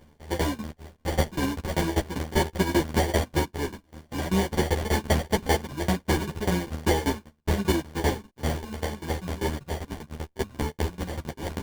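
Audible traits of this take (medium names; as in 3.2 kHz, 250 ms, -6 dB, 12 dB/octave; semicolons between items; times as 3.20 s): a buzz of ramps at a fixed pitch in blocks of 32 samples; tremolo saw down 5.1 Hz, depth 95%; aliases and images of a low sample rate 1.3 kHz, jitter 0%; a shimmering, thickened sound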